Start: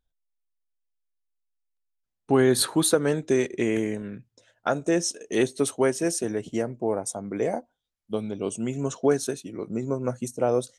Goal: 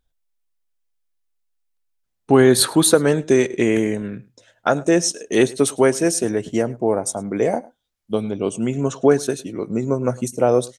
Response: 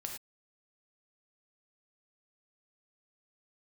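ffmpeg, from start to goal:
-filter_complex "[0:a]asettb=1/sr,asplit=3[s0][s1][s2];[s0]atrim=end=8.244[s3];[s1]atrim=start=8.24:end=9.3,asetpts=PTS-STARTPTS,afade=t=in:d=0.004:c=qsin,afade=t=out:st=1.056:d=0.004:c=qsin,bass=f=250:g=0,treble=f=4000:g=-5[s4];[s2]atrim=start=9.296[s5];[s3][s4]acrossfade=d=0.004:c1=hsin:c2=qsin[s6];[s6][s5]acrossfade=d=0.004:c1=qsin:c2=hsin,asplit=2[s7][s8];[s8]adelay=105,volume=0.0794,highshelf=f=4000:g=-2.36[s9];[s7][s9]amix=inputs=2:normalize=0,volume=2.24"

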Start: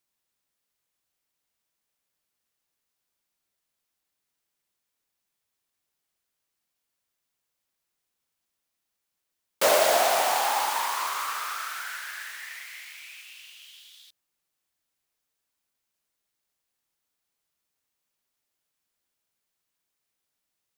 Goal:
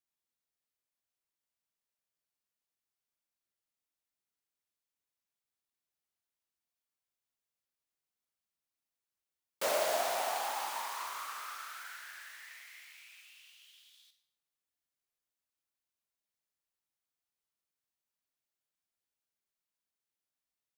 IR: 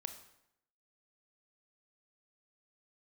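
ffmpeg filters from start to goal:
-filter_complex "[1:a]atrim=start_sample=2205[s0];[0:a][s0]afir=irnorm=-1:irlink=0,volume=0.376"

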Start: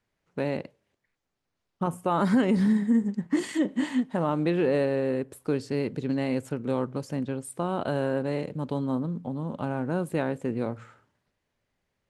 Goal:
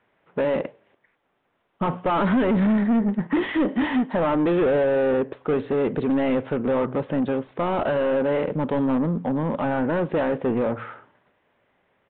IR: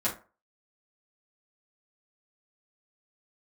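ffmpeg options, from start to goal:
-filter_complex "[0:a]asplit=2[s0][s1];[s1]highpass=f=720:p=1,volume=22.4,asoftclip=type=tanh:threshold=0.237[s2];[s0][s2]amix=inputs=2:normalize=0,lowpass=f=1000:p=1,volume=0.501,aresample=8000,aresample=44100"

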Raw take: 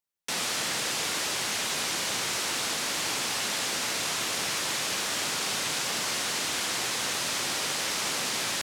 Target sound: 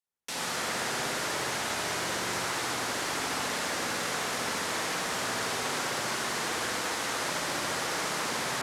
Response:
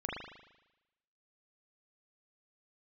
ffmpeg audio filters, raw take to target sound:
-filter_complex "[0:a]bandreject=f=50:t=h:w=6,bandreject=f=100:t=h:w=6,bandreject=f=150:t=h:w=6,bandreject=f=200:t=h:w=6[s0];[1:a]atrim=start_sample=2205,asetrate=25578,aresample=44100[s1];[s0][s1]afir=irnorm=-1:irlink=0,volume=0.531"

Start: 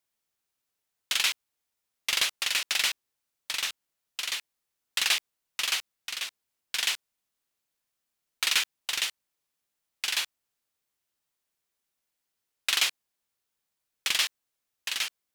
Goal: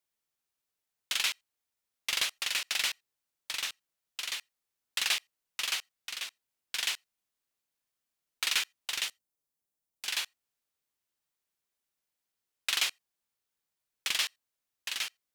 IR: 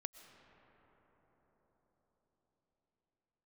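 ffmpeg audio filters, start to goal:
-filter_complex "[0:a]asettb=1/sr,asplit=3[s0][s1][s2];[s0]atrim=end=9.084[s3];[s1]atrim=start=9.08:end=10.06,asetpts=PTS-STARTPTS,afade=t=in:d=0.004:c=qsin,afade=t=out:st=0.976:d=0.004:c=qsin,equalizer=f=2300:t=o:w=2.4:g=-10[s4];[s2]atrim=start=10.056[s5];[s3][s4]acrossfade=d=0.004:c1=hsin:c2=qsin[s6];[s6][s5]acrossfade=d=0.004:c1=qsin:c2=hsin[s7];[1:a]atrim=start_sample=2205,atrim=end_sample=3969[s8];[s7][s8]afir=irnorm=-1:irlink=0"

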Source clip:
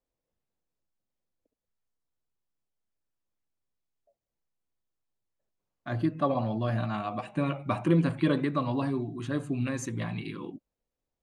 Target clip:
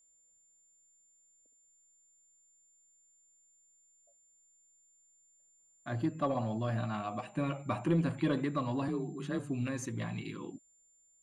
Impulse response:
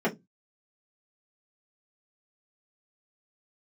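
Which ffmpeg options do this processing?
-filter_complex "[0:a]aeval=exprs='val(0)+0.000891*sin(2*PI*7200*n/s)':c=same,asettb=1/sr,asplit=3[s0][s1][s2];[s0]atrim=end=8.884[s3];[s1]atrim=start=8.88:end=9.39,asetpts=PTS-STARTPTS,afade=t=in:d=0.004:c=qsin,afade=t=out:st=0.506:d=0.004:c=qsin,afreqshift=31[s4];[s2]atrim=start=9.386[s5];[s3][s4]acrossfade=d=0.004:c1=hsin:c2=qsin[s6];[s6][s5]acrossfade=d=0.004:c1=qsin:c2=hsin,asplit=2[s7][s8];[s8]asoftclip=type=tanh:threshold=0.0631,volume=0.596[s9];[s7][s9]amix=inputs=2:normalize=0,volume=0.398"

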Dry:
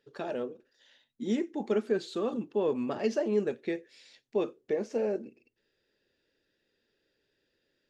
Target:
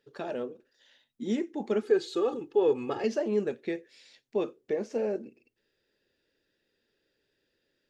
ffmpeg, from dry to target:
-filter_complex "[0:a]asettb=1/sr,asplit=3[s0][s1][s2];[s0]atrim=end=1.824[s3];[s1]atrim=start=1.82:end=3.04,asetpts=PTS-STARTPTS,afade=t=in:d=0.004:c=qsin,afade=t=out:st=1.216:d=0.004:c=qsin,aecho=1:1:2.4:0.88,atrim=end_sample=53802[s4];[s2]atrim=start=3.036[s5];[s3][s4]acrossfade=d=0.004:c1=hsin:c2=qsin[s6];[s6][s5]acrossfade=d=0.004:c1=qsin:c2=hsin"

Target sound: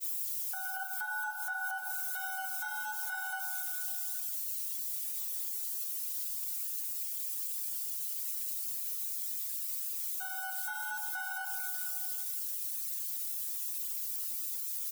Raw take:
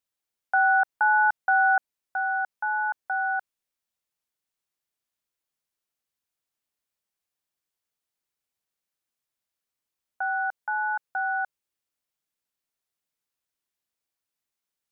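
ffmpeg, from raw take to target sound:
-filter_complex "[0:a]aeval=exprs='val(0)+0.5*0.0355*sgn(val(0))':c=same,acompressor=threshold=0.0562:ratio=10,crystalizer=i=2:c=0,adynamicequalizer=threshold=0.00316:dfrequency=1200:dqfactor=4.9:tfrequency=1200:tqfactor=4.9:attack=5:release=100:ratio=0.375:range=2:mode=boostabove:tftype=bell,asplit=2[s0][s1];[s1]aecho=0:1:230|437|623.3|791|941.9:0.631|0.398|0.251|0.158|0.1[s2];[s0][s2]amix=inputs=2:normalize=0,agate=range=0.0224:threshold=0.1:ratio=3:detection=peak,flanger=delay=7.4:depth=5.2:regen=-56:speed=0.86:shape=sinusoidal,afftdn=nr=13:nf=-40,tiltshelf=f=910:g=-6,alimiter=level_in=1.58:limit=0.0631:level=0:latency=1:release=287,volume=0.631"

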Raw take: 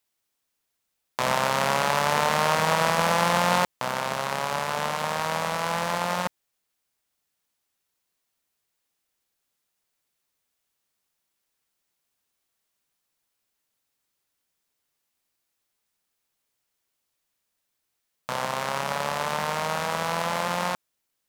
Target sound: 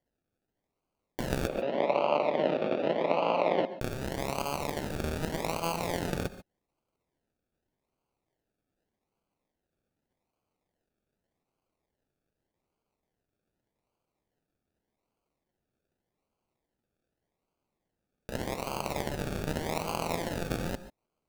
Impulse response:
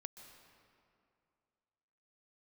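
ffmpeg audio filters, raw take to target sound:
-filter_complex "[0:a]acrusher=samples=34:mix=1:aa=0.000001:lfo=1:lforange=20.4:lforate=0.84,asettb=1/sr,asplit=3[s0][s1][s2];[s0]atrim=end=1.474[s3];[s1]atrim=start=1.47:end=3.78,asetpts=PTS-STARTPTS,afade=t=in:d=0.004:c=qsin,afade=t=out:st=2.306:d=0.004:c=qsin,highpass=f=190:w=0.5412,highpass=f=190:w=1.3066,equalizer=f=190:t=q:w=4:g=-6,equalizer=f=590:t=q:w=4:g=8,equalizer=f=1600:t=q:w=4:g=-10,lowpass=f=3200:w=0.5412,lowpass=f=3200:w=1.3066[s4];[s2]atrim=start=3.776[s5];[s3][s4]acrossfade=d=0.004:c1=hsin:c2=qsin[s6];[s6][s5]acrossfade=d=0.004:c1=qsin:c2=hsin[s7];[1:a]atrim=start_sample=2205,atrim=end_sample=6615[s8];[s7][s8]afir=irnorm=-1:irlink=0"

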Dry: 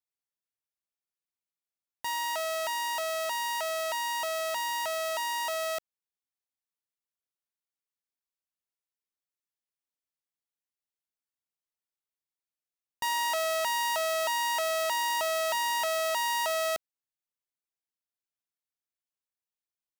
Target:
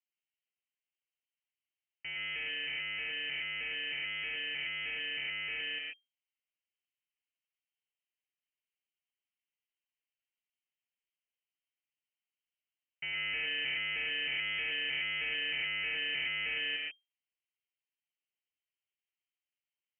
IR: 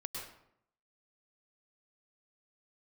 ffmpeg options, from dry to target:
-filter_complex "[0:a]acrusher=samples=21:mix=1:aa=0.000001[s0];[1:a]atrim=start_sample=2205,atrim=end_sample=6615[s1];[s0][s1]afir=irnorm=-1:irlink=0,lowpass=f=2700:t=q:w=0.5098,lowpass=f=2700:t=q:w=0.6013,lowpass=f=2700:t=q:w=0.9,lowpass=f=2700:t=q:w=2.563,afreqshift=-3200,volume=0.631"

